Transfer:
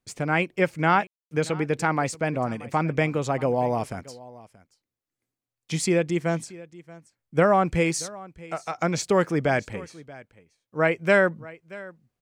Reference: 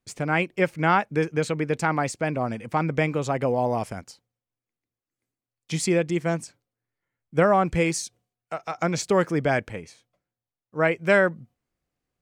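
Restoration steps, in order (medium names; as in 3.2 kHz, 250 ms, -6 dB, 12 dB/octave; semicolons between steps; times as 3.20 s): room tone fill 1.07–1.31 s; inverse comb 630 ms -20 dB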